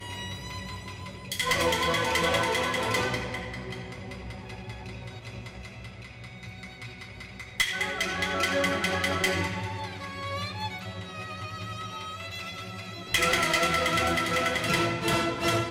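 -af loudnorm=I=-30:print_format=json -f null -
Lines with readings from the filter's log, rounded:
"input_i" : "-27.1",
"input_tp" : "-10.0",
"input_lra" : "10.5",
"input_thresh" : "-38.2",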